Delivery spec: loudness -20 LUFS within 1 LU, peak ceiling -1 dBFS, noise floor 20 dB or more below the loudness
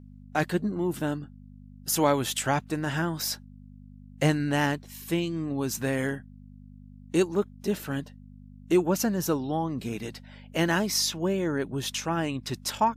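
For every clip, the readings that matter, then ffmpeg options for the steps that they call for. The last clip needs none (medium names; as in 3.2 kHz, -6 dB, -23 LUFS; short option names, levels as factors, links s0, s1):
hum 50 Hz; highest harmonic 250 Hz; hum level -47 dBFS; loudness -28.0 LUFS; peak level -10.0 dBFS; loudness target -20.0 LUFS
-> -af "bandreject=f=50:t=h:w=4,bandreject=f=100:t=h:w=4,bandreject=f=150:t=h:w=4,bandreject=f=200:t=h:w=4,bandreject=f=250:t=h:w=4"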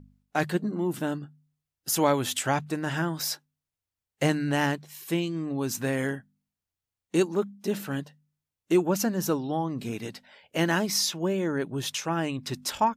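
hum not found; loudness -28.5 LUFS; peak level -10.0 dBFS; loudness target -20.0 LUFS
-> -af "volume=2.66"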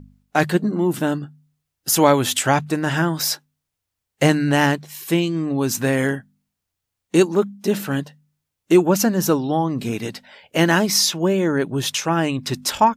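loudness -20.0 LUFS; peak level -1.5 dBFS; noise floor -81 dBFS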